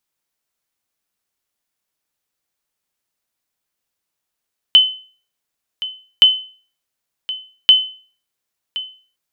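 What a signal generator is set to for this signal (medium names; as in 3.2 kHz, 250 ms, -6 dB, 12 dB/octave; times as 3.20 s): sonar ping 3.04 kHz, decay 0.41 s, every 1.47 s, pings 3, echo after 1.07 s, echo -16 dB -1.5 dBFS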